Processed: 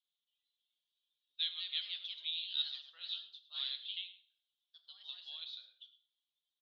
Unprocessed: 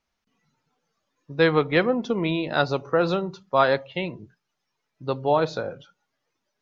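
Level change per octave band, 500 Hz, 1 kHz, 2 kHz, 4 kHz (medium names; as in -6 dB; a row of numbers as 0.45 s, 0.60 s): under -40 dB, under -40 dB, -25.0 dB, -1.5 dB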